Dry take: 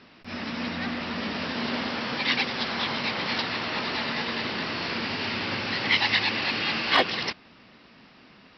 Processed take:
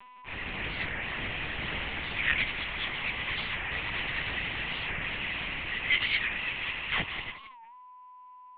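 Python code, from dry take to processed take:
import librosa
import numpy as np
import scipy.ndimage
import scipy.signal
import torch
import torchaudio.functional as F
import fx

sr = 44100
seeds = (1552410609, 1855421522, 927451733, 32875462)

y = scipy.signal.sosfilt(scipy.signal.butter(2, 540.0, 'highpass', fs=sr, output='sos'), x)
y = fx.peak_eq(y, sr, hz=1400.0, db=-13.5, octaves=0.47)
y = fx.notch(y, sr, hz=800.0, q=17.0)
y = fx.rider(y, sr, range_db=4, speed_s=2.0)
y = fx.fixed_phaser(y, sr, hz=1900.0, stages=4)
y = y + 10.0 ** (-52.0 / 20.0) * np.sin(2.0 * np.pi * 1000.0 * np.arange(len(y)) / sr)
y = fx.echo_feedback(y, sr, ms=177, feedback_pct=30, wet_db=-12.0)
y = fx.lpc_vocoder(y, sr, seeds[0], excitation='pitch_kept', order=8)
y = fx.record_warp(y, sr, rpm=45.0, depth_cents=160.0)
y = y * 10.0 ** (1.5 / 20.0)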